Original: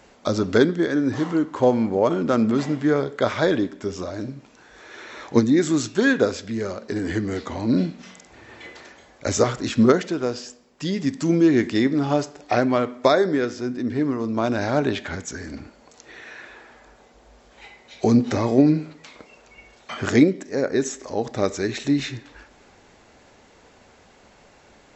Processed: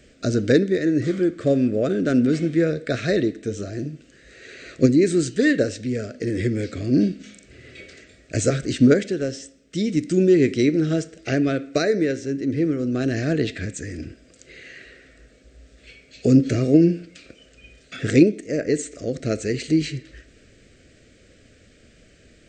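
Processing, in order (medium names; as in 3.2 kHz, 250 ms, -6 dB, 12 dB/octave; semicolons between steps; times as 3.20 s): Butterworth band-stop 830 Hz, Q 1; bass shelf 190 Hz +8 dB; tape speed +11%; trim -1 dB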